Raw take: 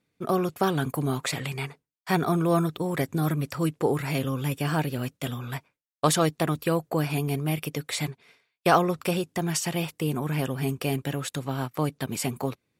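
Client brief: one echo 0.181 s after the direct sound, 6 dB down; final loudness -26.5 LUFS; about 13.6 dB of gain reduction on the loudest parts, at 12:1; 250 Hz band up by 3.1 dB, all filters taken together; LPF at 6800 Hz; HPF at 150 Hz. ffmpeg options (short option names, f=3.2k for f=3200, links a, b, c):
-af "highpass=150,lowpass=6.8k,equalizer=f=250:t=o:g=6,acompressor=threshold=-28dB:ratio=12,aecho=1:1:181:0.501,volume=7dB"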